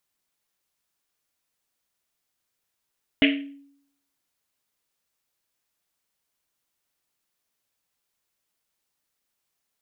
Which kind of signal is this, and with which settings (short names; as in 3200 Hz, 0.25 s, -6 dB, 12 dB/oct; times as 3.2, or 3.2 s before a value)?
Risset drum, pitch 280 Hz, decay 0.72 s, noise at 2500 Hz, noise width 1300 Hz, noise 35%